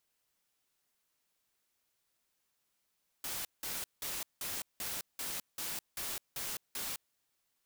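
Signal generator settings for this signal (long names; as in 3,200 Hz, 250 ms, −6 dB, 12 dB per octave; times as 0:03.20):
noise bursts white, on 0.21 s, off 0.18 s, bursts 10, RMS −39 dBFS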